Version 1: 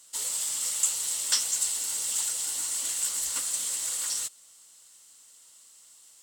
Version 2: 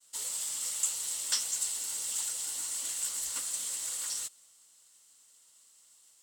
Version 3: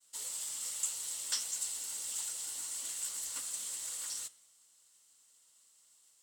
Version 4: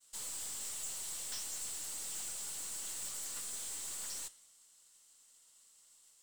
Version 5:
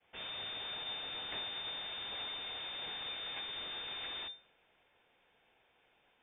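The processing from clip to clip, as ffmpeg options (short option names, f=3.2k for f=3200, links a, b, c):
-af "agate=range=-33dB:threshold=-52dB:ratio=3:detection=peak,volume=-5dB"
-af "flanger=delay=9.1:depth=8:regen=-86:speed=0.62:shape=triangular"
-af "aeval=exprs='(tanh(141*val(0)+0.5)-tanh(0.5))/141':c=same,volume=3.5dB"
-af "lowpass=f=3.1k:t=q:w=0.5098,lowpass=f=3.1k:t=q:w=0.6013,lowpass=f=3.1k:t=q:w=0.9,lowpass=f=3.1k:t=q:w=2.563,afreqshift=-3600,volume=8.5dB"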